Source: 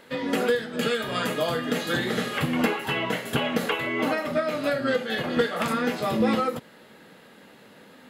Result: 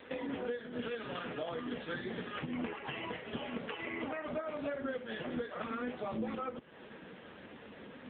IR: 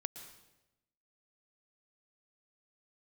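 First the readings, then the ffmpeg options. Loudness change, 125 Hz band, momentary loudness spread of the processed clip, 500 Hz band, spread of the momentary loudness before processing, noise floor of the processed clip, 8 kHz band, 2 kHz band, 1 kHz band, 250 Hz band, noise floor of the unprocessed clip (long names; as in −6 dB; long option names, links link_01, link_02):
−14.0 dB, −15.0 dB, 13 LU, −13.5 dB, 3 LU, −53 dBFS, below −40 dB, −14.5 dB, −14.0 dB, −13.0 dB, −51 dBFS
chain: -af "acompressor=threshold=-38dB:ratio=6,volume=3dB" -ar 8000 -c:a libopencore_amrnb -b:a 5900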